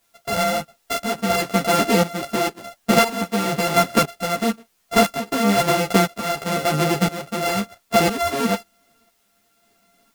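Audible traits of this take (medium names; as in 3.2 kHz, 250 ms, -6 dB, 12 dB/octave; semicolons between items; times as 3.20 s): a buzz of ramps at a fixed pitch in blocks of 64 samples; tremolo saw up 0.99 Hz, depth 80%; a quantiser's noise floor 12-bit, dither triangular; a shimmering, thickened sound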